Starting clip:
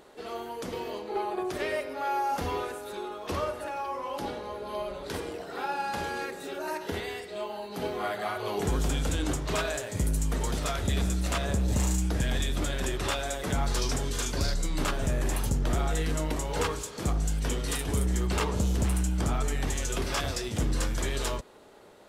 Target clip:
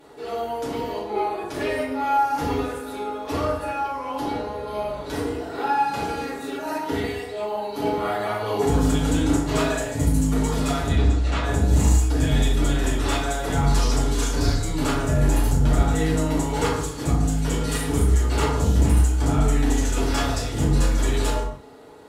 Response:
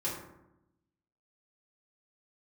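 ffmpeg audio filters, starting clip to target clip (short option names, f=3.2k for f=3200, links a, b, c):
-filter_complex "[0:a]asettb=1/sr,asplit=3[a][b][c];[a]atrim=end=10.884[d];[b]atrim=start=10.88:end=11.44,asetpts=PTS-STARTPTS,afade=t=in:d=0.004:c=qsin,afade=t=out:st=0.556:d=0.004:c=qsin,lowpass=4.3k[e];[c]atrim=start=11.436[f];[d][e]acrossfade=d=0.004:c1=hsin:c2=qsin[g];[g][f]acrossfade=d=0.004:c1=qsin:c2=hsin[h];[1:a]atrim=start_sample=2205,afade=t=out:st=0.22:d=0.01,atrim=end_sample=10143,asetrate=35721,aresample=44100[i];[h][i]afir=irnorm=-1:irlink=0"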